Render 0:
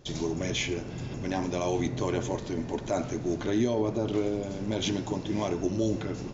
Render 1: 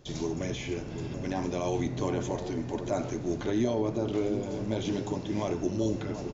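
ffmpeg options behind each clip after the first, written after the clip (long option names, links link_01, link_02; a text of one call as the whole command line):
ffmpeg -i in.wav -filter_complex "[0:a]acrossover=split=1200[link_01][link_02];[link_01]aecho=1:1:738:0.376[link_03];[link_02]alimiter=level_in=6.5dB:limit=-24dB:level=0:latency=1:release=50,volume=-6.5dB[link_04];[link_03][link_04]amix=inputs=2:normalize=0,volume=-1.5dB" out.wav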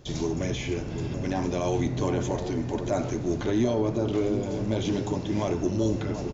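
ffmpeg -i in.wav -filter_complex "[0:a]equalizer=frequency=63:width_type=o:width=1.7:gain=4.5,asplit=2[link_01][link_02];[link_02]asoftclip=type=tanh:threshold=-24.5dB,volume=-5dB[link_03];[link_01][link_03]amix=inputs=2:normalize=0" out.wav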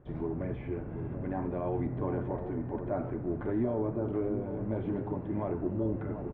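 ffmpeg -i in.wav -af "lowpass=frequency=1700:width=0.5412,lowpass=frequency=1700:width=1.3066,volume=-6dB" out.wav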